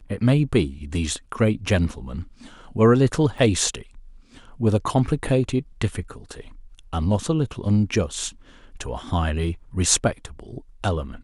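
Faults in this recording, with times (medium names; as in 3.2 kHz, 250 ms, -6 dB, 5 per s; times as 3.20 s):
3.38 s: dropout 4.8 ms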